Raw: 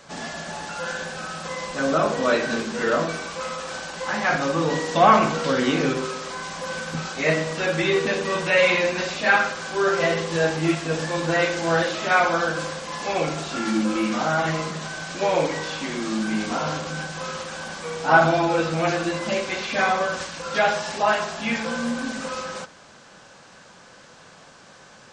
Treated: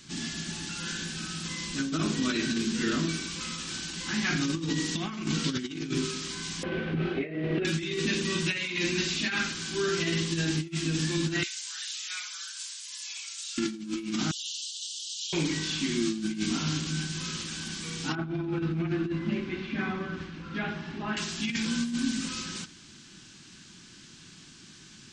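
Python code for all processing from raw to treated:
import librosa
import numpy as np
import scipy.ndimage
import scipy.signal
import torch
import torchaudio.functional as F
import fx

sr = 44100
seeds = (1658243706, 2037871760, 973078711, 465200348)

y = fx.chain(x, sr, fx.lowpass(hz=2500.0, slope=24),
    fx.over_compress(threshold_db=-30.0, ratio=-1.0),
    fx.band_shelf(hz=510.0, db=15.5, octaves=1.3), at=(6.63, 7.65))
y = fx.chain(y, sr, fx.highpass(hz=900.0, slope=24),
    fx.differentiator(), at=(11.43, 13.58))
y = fx.chain(y, sr, fx.steep_highpass(hz=2900.0, slope=96),
    fx.comb(ms=4.6, depth=0.42), at=(14.31, 15.33))
y = fx.chain(y, sr, fx.lowpass(hz=1500.0, slope=12),
    fx.echo_alternate(ms=116, hz=820.0, feedback_pct=62, wet_db=-13.5), at=(18.15, 21.17))
y = fx.curve_eq(y, sr, hz=(350.0, 520.0, 3100.0), db=(0, -27, 0))
y = fx.over_compress(y, sr, threshold_db=-28.0, ratio=-0.5)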